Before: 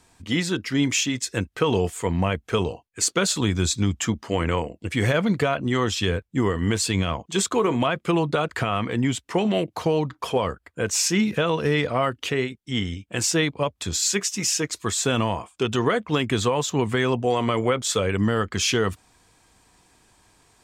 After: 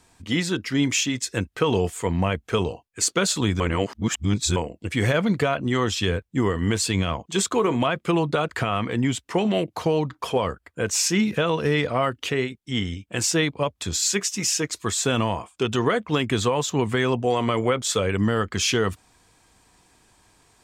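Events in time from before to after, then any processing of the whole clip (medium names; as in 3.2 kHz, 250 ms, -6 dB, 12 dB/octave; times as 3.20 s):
3.60–4.56 s: reverse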